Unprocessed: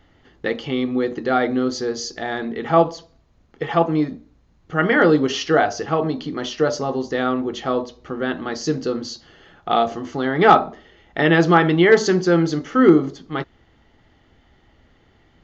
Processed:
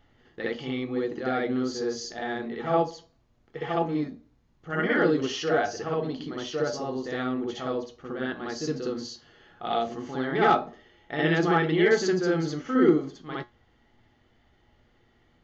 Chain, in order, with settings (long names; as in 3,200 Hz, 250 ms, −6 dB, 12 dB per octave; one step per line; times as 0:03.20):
tuned comb filter 120 Hz, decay 0.21 s, harmonics all, mix 60%
on a send: backwards echo 62 ms −4.5 dB
on the sum: dynamic equaliser 1,000 Hz, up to −5 dB, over −34 dBFS, Q 2.2
level −3.5 dB